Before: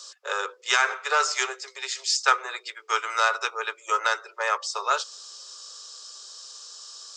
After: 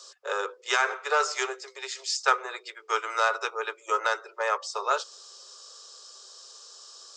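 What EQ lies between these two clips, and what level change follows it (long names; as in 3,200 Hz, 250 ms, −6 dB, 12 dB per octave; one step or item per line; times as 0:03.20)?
tilt shelving filter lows +5.5 dB, about 790 Hz
0.0 dB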